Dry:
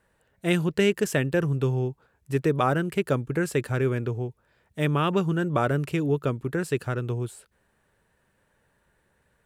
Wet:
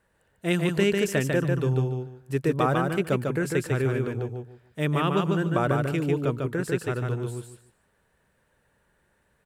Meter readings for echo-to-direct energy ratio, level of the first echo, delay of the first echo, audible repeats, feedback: −3.5 dB, −3.5 dB, 147 ms, 3, 22%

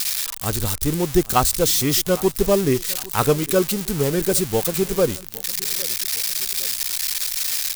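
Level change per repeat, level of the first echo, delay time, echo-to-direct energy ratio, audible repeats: −6.0 dB, −21.0 dB, 808 ms, −20.0 dB, 2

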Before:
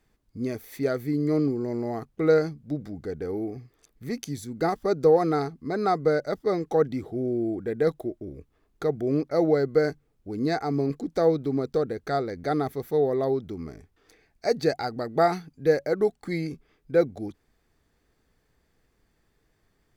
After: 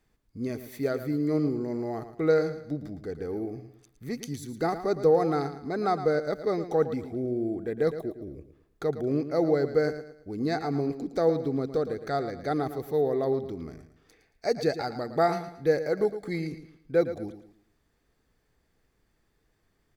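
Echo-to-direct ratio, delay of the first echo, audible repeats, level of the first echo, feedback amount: −11.0 dB, 112 ms, 3, −11.5 dB, 35%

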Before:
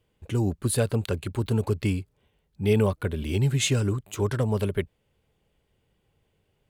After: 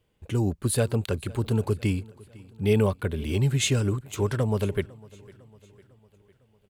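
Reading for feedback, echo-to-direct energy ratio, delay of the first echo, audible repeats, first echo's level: 54%, −21.5 dB, 503 ms, 3, −23.0 dB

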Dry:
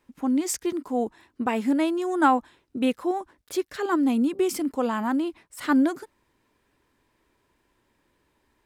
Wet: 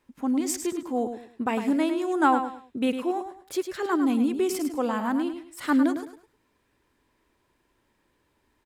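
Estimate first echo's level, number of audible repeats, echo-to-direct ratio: −8.5 dB, 3, −8.0 dB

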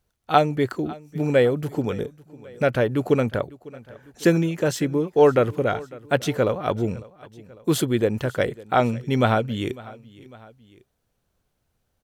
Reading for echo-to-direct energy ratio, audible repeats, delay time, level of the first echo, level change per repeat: −20.0 dB, 2, 551 ms, −21.0 dB, −5.0 dB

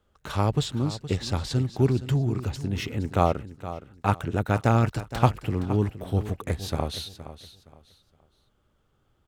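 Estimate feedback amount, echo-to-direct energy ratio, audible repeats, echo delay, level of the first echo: 27%, −13.0 dB, 2, 468 ms, −13.5 dB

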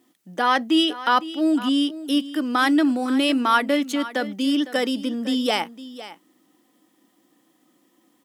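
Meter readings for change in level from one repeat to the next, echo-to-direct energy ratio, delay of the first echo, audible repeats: repeats not evenly spaced, −15.5 dB, 506 ms, 1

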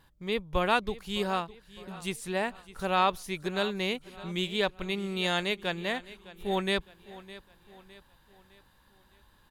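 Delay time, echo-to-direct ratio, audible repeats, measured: 609 ms, −17.0 dB, 3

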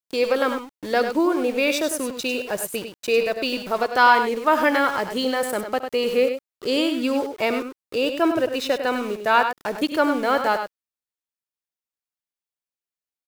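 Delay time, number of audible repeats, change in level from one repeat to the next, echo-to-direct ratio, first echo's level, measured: 69 ms, 2, repeats not evenly spaced, −7.5 dB, −16.0 dB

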